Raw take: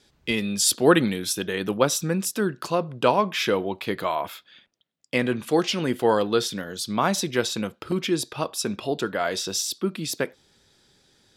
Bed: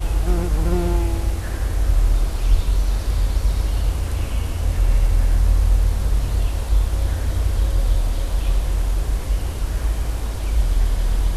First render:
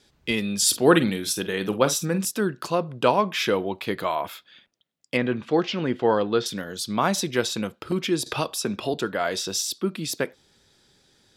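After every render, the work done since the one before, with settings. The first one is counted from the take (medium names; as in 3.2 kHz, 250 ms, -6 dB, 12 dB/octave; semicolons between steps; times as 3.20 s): 0.58–2.25 s: doubling 47 ms -12 dB; 5.17–6.46 s: distance through air 170 m; 8.26–8.94 s: three bands compressed up and down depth 70%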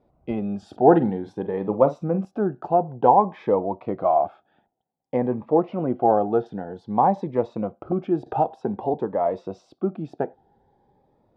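resonant low-pass 780 Hz, resonance Q 5.9; Shepard-style phaser rising 0.53 Hz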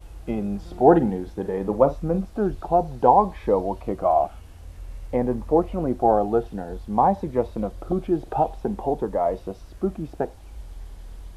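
add bed -20.5 dB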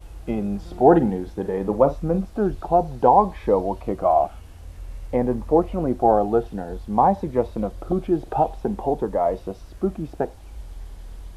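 trim +1.5 dB; peak limiter -3 dBFS, peak gain reduction 2.5 dB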